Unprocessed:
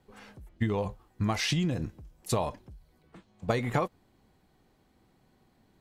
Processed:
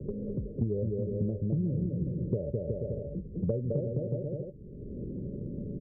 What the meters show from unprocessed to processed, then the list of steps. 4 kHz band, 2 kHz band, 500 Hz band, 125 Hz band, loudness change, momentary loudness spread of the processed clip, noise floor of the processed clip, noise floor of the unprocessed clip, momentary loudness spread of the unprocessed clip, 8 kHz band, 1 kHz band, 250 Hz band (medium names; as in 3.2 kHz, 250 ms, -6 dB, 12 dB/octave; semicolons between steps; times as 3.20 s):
under -40 dB, under -40 dB, +1.5 dB, +3.0 dB, -2.0 dB, 8 LU, -44 dBFS, -67 dBFS, 13 LU, under -35 dB, under -25 dB, +1.5 dB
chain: local Wiener filter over 41 samples; dynamic bell 190 Hz, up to -4 dB, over -40 dBFS, Q 0.75; rippled Chebyshev low-pass 590 Hz, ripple 6 dB; bouncing-ball echo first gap 210 ms, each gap 0.75×, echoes 5; three bands compressed up and down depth 100%; trim +5 dB